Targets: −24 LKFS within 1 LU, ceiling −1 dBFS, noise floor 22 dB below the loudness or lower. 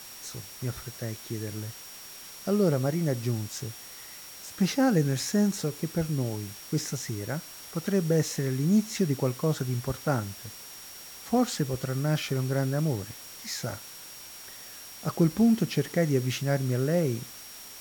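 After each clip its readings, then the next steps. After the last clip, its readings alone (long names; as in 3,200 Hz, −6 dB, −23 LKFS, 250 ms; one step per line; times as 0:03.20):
interfering tone 5,600 Hz; level of the tone −48 dBFS; background noise floor −45 dBFS; target noise floor −51 dBFS; integrated loudness −28.5 LKFS; sample peak −12.5 dBFS; target loudness −24.0 LKFS
→ notch filter 5,600 Hz, Q 30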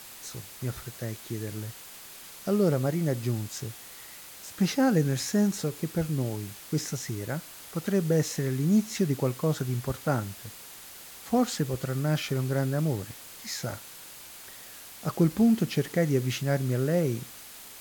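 interfering tone none found; background noise floor −46 dBFS; target noise floor −51 dBFS
→ noise reduction from a noise print 6 dB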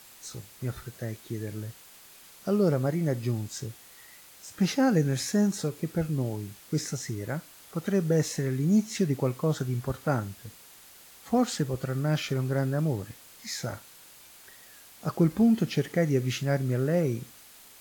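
background noise floor −52 dBFS; integrated loudness −28.5 LKFS; sample peak −13.0 dBFS; target loudness −24.0 LKFS
→ level +4.5 dB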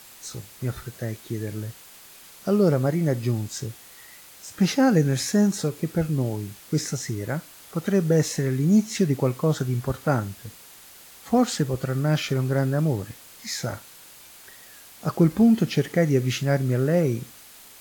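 integrated loudness −24.0 LKFS; sample peak −8.5 dBFS; background noise floor −48 dBFS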